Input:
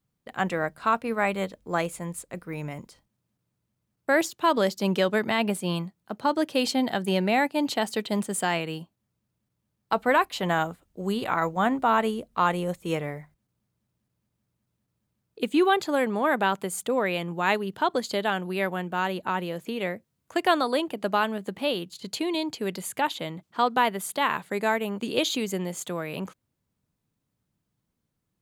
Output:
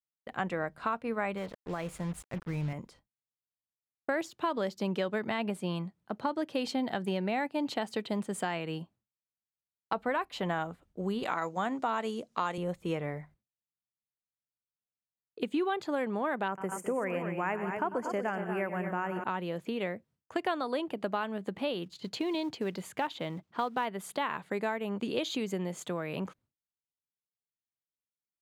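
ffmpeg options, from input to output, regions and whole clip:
-filter_complex "[0:a]asettb=1/sr,asplit=3[a][b][c];[a]atrim=end=1.374[d];[b]atrim=start=1.37:end=2.73,asetpts=PTS-STARTPTS,afade=t=in:d=0.004:c=qsin,afade=t=out:st=1.356:d=0.004:c=qsin,acompressor=threshold=-29dB:ratio=6:attack=3.2:release=140:knee=1:detection=peak,asubboost=boost=8:cutoff=180,acrusher=bits=6:mix=0:aa=0.5[e];[c]atrim=start=2.726[f];[d][e]acrossfade=d=0.004:c1=hsin:c2=qsin[g];[g][f]acrossfade=d=0.004:c1=qsin:c2=hsin,asettb=1/sr,asplit=3[h][i][j];[h]atrim=end=11.234[k];[i]atrim=start=11.23:end=12.58,asetpts=PTS-STARTPTS,afade=t=in:d=0.004:c=qsin,afade=t=out:st=1.346:d=0.004:c=qsin,highpass=180,equalizer=f=6.2k:w=0.99:g=13.5[l];[j]atrim=start=12.576[m];[k][l]acrossfade=d=0.004:c1=hsin:c2=qsin[n];[n][m]acrossfade=d=0.004:c1=qsin:c2=hsin,asettb=1/sr,asplit=3[o][p][q];[o]atrim=end=16.484[r];[p]atrim=start=16.48:end=19.24,asetpts=PTS-STARTPTS,afade=t=in:d=0.004:c=qsin,afade=t=out:st=2.756:d=0.004:c=qsin,asuperstop=centerf=3800:order=4:qfactor=1.2,aecho=1:1:96|123|207|237:0.188|0.178|0.133|0.335,atrim=end_sample=121716[s];[q]atrim=start=19.236[t];[r][s]acrossfade=d=0.004:c1=hsin:c2=qsin[u];[u][t]acrossfade=d=0.004:c1=qsin:c2=hsin,asettb=1/sr,asplit=3[v][w][x];[v]atrim=end=21.834[y];[w]atrim=start=21.83:end=23.86,asetpts=PTS-STARTPTS,afade=t=in:d=0.004:c=qsin,afade=t=out:st=2.026:d=0.004:c=qsin,equalizer=f=10k:t=o:w=0.77:g=-5,acrusher=bits=6:mode=log:mix=0:aa=0.000001[z];[x]atrim=start=23.856[aa];[y][z]acrossfade=d=0.004:c1=hsin:c2=qsin[ab];[ab][aa]acrossfade=d=0.004:c1=qsin:c2=hsin,lowpass=f=3k:p=1,agate=range=-33dB:threshold=-54dB:ratio=3:detection=peak,acompressor=threshold=-29dB:ratio=3,volume=-1dB"

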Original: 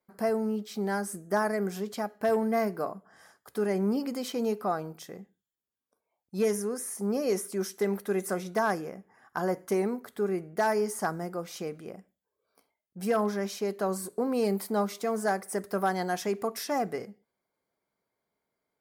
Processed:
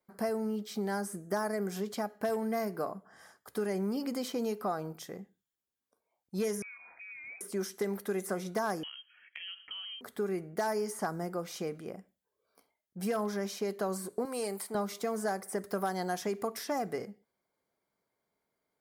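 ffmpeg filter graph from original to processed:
-filter_complex "[0:a]asettb=1/sr,asplit=3[a][b][c];[a]atrim=end=6.624[d];[b]atrim=start=6.62:end=7.41,asetpts=PTS-STARTPTS,afade=t=in:d=0.004:c=qsin,afade=t=out:st=0.786:d=0.004:c=qsin,bandreject=f=50:t=h:w=6,bandreject=f=100:t=h:w=6,bandreject=f=150:t=h:w=6,bandreject=f=200:t=h:w=6,bandreject=f=250:t=h:w=6,lowpass=f=2.3k:t=q:w=0.5098,lowpass=f=2.3k:t=q:w=0.6013,lowpass=f=2.3k:t=q:w=0.9,lowpass=f=2.3k:t=q:w=2.563,afreqshift=-2700,acompressor=threshold=-49dB:ratio=2.5:attack=3.2:release=140:knee=1:detection=peak[e];[c]atrim=start=7.406[f];[d][e]acrossfade=d=0.004:c1=hsin:c2=qsin[g];[g][f]acrossfade=d=0.004:c1=qsin:c2=hsin,asettb=1/sr,asplit=3[h][i][j];[h]atrim=end=8.834[k];[i]atrim=start=8.83:end=10.01,asetpts=PTS-STARTPTS,afade=t=in:d=0.004:c=qsin,afade=t=out:st=1.176:d=0.004:c=qsin,acompressor=threshold=-35dB:ratio=6:attack=3.2:release=140:knee=1:detection=peak,lowpass=f=2.9k:t=q:w=0.5098,lowpass=f=2.9k:t=q:w=0.6013,lowpass=f=2.9k:t=q:w=0.9,lowpass=f=2.9k:t=q:w=2.563,afreqshift=-3400[l];[j]atrim=start=10.006[m];[k][l]acrossfade=d=0.004:c1=hsin:c2=qsin[n];[n][m]acrossfade=d=0.004:c1=qsin:c2=hsin,asettb=1/sr,asplit=3[o][p][q];[o]atrim=end=14.254[r];[p]atrim=start=14.25:end=14.75,asetpts=PTS-STARTPTS,afade=t=in:d=0.004:c=qsin,afade=t=out:st=0.496:d=0.004:c=qsin,highpass=f=870:p=1,equalizer=f=8.8k:w=1.7:g=12.5[s];[q]atrim=start=14.746[t];[r][s]acrossfade=d=0.004:c1=hsin:c2=qsin[u];[u][t]acrossfade=d=0.004:c1=qsin:c2=hsin,bandreject=f=2.6k:w=29,acrossover=split=1600|3800[v][w][x];[v]acompressor=threshold=-30dB:ratio=4[y];[w]acompressor=threshold=-49dB:ratio=4[z];[x]acompressor=threshold=-42dB:ratio=4[aa];[y][z][aa]amix=inputs=3:normalize=0"

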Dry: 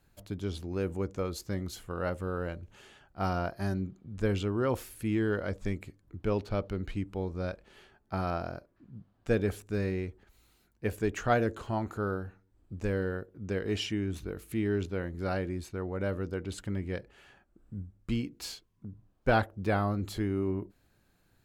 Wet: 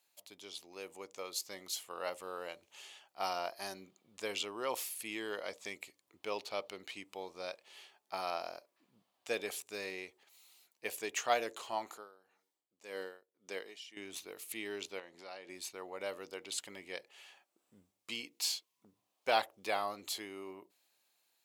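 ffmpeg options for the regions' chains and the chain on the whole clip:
-filter_complex "[0:a]asettb=1/sr,asplit=3[a][b][c];[a]atrim=end=11.894[d];[b]atrim=start=11.89:end=13.97,asetpts=PTS-STARTPTS,afade=t=in:d=0.004:c=qsin,afade=t=out:st=2.076:d=0.004:c=qsin,highpass=160,bandreject=f=2.6k:w=18,aeval=exprs='val(0)*pow(10,-20*(0.5-0.5*cos(2*PI*1.8*n/s))/20)':c=same[e];[c]atrim=start=13.966[f];[d][e]acrossfade=d=0.004:c1=hsin:c2=qsin[g];[g][f]acrossfade=d=0.004:c1=qsin:c2=hsin,asettb=1/sr,asplit=3[h][i][j];[h]atrim=end=14.994[k];[i]atrim=start=14.99:end=15.49,asetpts=PTS-STARTPTS,afade=t=in:d=0.004:c=qsin,afade=t=out:st=0.496:d=0.004:c=qsin,highpass=120,lowpass=6.9k,acompressor=threshold=-37dB:ratio=5:attack=3.2:release=140:knee=1:detection=peak[l];[j]atrim=start=15.486[m];[k][l]acrossfade=d=0.004:c1=hsin:c2=qsin[n];[n][m]acrossfade=d=0.004:c1=qsin:c2=hsin,highpass=1.1k,equalizer=f=1.5k:t=o:w=0.7:g=-14.5,dynaudnorm=f=240:g=11:m=5.5dB,volume=1.5dB"

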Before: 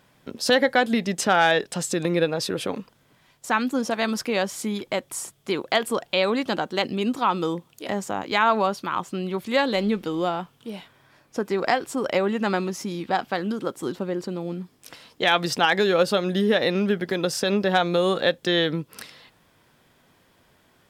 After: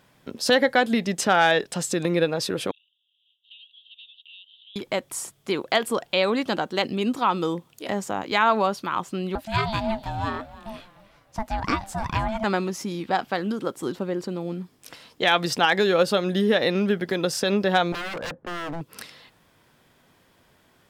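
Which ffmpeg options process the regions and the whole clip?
-filter_complex "[0:a]asettb=1/sr,asplit=3[a][b][c];[a]atrim=end=2.714[d];[b]atrim=start=2.71:end=4.76,asetpts=PTS-STARTPTS,afade=t=in:d=0.004:c=qsin,afade=t=out:st=2.046:d=0.004:c=qsin,asuperpass=centerf=3200:order=12:qfactor=3.1,acompressor=threshold=-43dB:ratio=4:attack=3.2:release=140:knee=1:detection=peak[e];[c]atrim=start=4.756[f];[d][e]acrossfade=d=0.004:c1=hsin:c2=qsin[g];[g][f]acrossfade=d=0.004:c1=qsin:c2=hsin,asettb=1/sr,asplit=3[h][i][j];[h]atrim=end=9.354[k];[i]atrim=start=9.35:end=12.44,asetpts=PTS-STARTPTS,afade=t=in:d=0.004:c=qsin,afade=t=out:st=3.086:d=0.004:c=qsin,aeval=exprs='val(0)*sin(2*PI*440*n/s)':c=same,asplit=4[l][m][n][o];[m]adelay=302,afreqshift=-45,volume=-18dB[p];[n]adelay=604,afreqshift=-90,volume=-26.6dB[q];[o]adelay=906,afreqshift=-135,volume=-35.3dB[r];[l][p][q][r]amix=inputs=4:normalize=0,atrim=end_sample=136269[s];[j]atrim=start=12.436[t];[k][s]acrossfade=d=0.004:c1=hsin:c2=qsin[u];[u][t]acrossfade=d=0.004:c1=qsin:c2=hsin,asettb=1/sr,asplit=3[v][w][x];[v]atrim=end=17.924[y];[w]atrim=start=17.92:end=18.81,asetpts=PTS-STARTPTS,afade=t=in:d=0.004:c=qsin,afade=t=out:st=0.886:d=0.004:c=qsin,lowpass=f=1.4k:w=0.5412,lowpass=f=1.4k:w=1.3066,aeval=exprs='0.0473*(abs(mod(val(0)/0.0473+3,4)-2)-1)':c=same[z];[x]atrim=start=18.806[aa];[y][z]acrossfade=d=0.004:c1=hsin:c2=qsin[ab];[ab][aa]acrossfade=d=0.004:c1=qsin:c2=hsin"

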